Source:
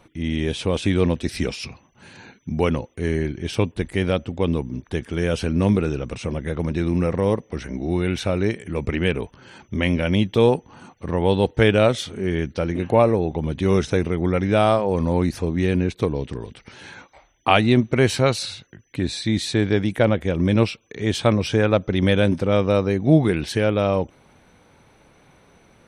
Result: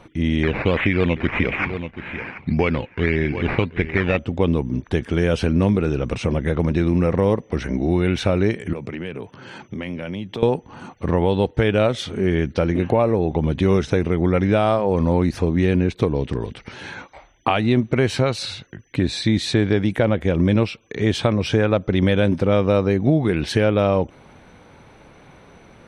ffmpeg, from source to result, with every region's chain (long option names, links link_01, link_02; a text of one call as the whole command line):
ffmpeg -i in.wav -filter_complex "[0:a]asettb=1/sr,asplit=3[link_01][link_02][link_03];[link_01]atrim=end=0.434[link_04];[link_02]atrim=start=0.43:end=4.19,asetpts=PTS-STARTPTS,afade=type=in:duration=0.004:curve=qsin,afade=type=out:start_time=3.756:duration=0.004:curve=qsin,acrusher=samples=11:mix=1:aa=0.000001:lfo=1:lforange=6.6:lforate=1.7,lowpass=frequency=2300:width_type=q:width=4.2,aecho=1:1:732:0.15,atrim=end_sample=165816[link_05];[link_03]atrim=start=4.186[link_06];[link_04][link_05]acrossfade=duration=0.004:curve1=hsin:curve2=qsin[link_07];[link_07][link_06]acrossfade=duration=0.004:curve1=qsin:curve2=hsin,asettb=1/sr,asplit=3[link_08][link_09][link_10];[link_08]atrim=end=8.734[link_11];[link_09]atrim=start=8.73:end=10.43,asetpts=PTS-STARTPTS,afade=type=in:duration=0.004:curve=qsin,afade=type=out:start_time=1.696:duration=0.004:curve=qsin,highpass=frequency=100:width=0.5412,highpass=frequency=100:width=1.3066,acompressor=threshold=-35dB:ratio=4:attack=3.2:release=140:knee=1:detection=peak[link_12];[link_10]atrim=start=10.426[link_13];[link_11][link_12]acrossfade=duration=0.004:curve1=hsin:curve2=qsin[link_14];[link_14][link_13]acrossfade=duration=0.004:curve1=qsin:curve2=hsin,highshelf=frequency=6500:gain=-11.5,alimiter=limit=-9.5dB:level=0:latency=1:release=413,acompressor=threshold=-24dB:ratio=2,volume=7dB" out.wav